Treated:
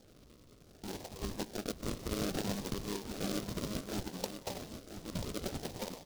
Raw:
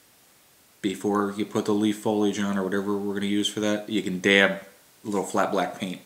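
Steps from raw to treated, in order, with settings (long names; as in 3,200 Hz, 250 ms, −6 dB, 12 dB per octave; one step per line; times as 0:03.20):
time-frequency cells dropped at random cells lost 38%
Butterworth high-pass 180 Hz 36 dB per octave
low shelf with overshoot 790 Hz −12.5 dB, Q 1.5
notch filter 1,200 Hz, Q 5.5
dynamic equaliser 8,800 Hz, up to −7 dB, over −50 dBFS, Q 0.99
compressor whose output falls as the input rises −35 dBFS, ratio −0.5
delay with a high-pass on its return 261 ms, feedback 59%, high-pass 2,500 Hz, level −9 dB
sample-and-hold swept by an LFO 42×, swing 60% 0.63 Hz
single-tap delay 987 ms −9.5 dB
short delay modulated by noise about 4,100 Hz, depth 0.12 ms
level −3 dB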